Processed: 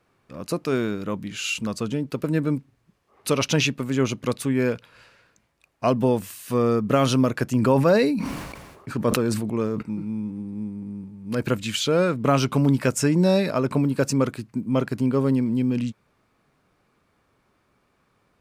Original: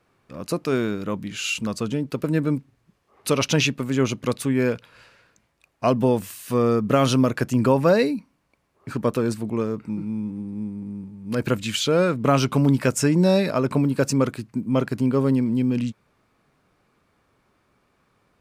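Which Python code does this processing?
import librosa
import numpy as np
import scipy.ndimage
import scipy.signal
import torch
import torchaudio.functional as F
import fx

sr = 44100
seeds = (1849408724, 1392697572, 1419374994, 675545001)

y = fx.sustainer(x, sr, db_per_s=41.0, at=(7.61, 9.81), fade=0.02)
y = F.gain(torch.from_numpy(y), -1.0).numpy()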